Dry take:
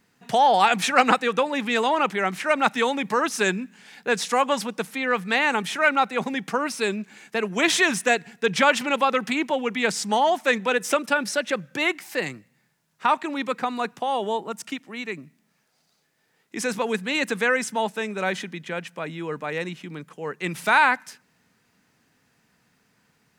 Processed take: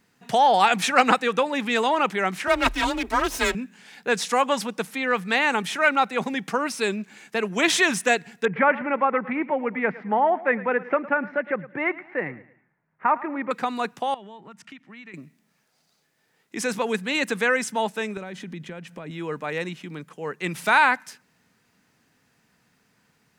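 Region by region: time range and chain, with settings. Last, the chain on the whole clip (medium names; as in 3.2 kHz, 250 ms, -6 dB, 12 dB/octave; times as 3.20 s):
2.47–3.55 s: comb filter that takes the minimum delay 3.2 ms + frequency shift +29 Hz
8.45–13.51 s: Chebyshev low-pass 2.1 kHz, order 4 + feedback delay 109 ms, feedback 38%, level -18 dB
14.14–15.14 s: FFT filter 170 Hz 0 dB, 480 Hz -11 dB, 1.9 kHz -1 dB, 14 kHz -22 dB + compression 4:1, threshold -40 dBFS
18.17–19.11 s: compression 3:1, threshold -40 dBFS + bass shelf 380 Hz +10.5 dB
whole clip: none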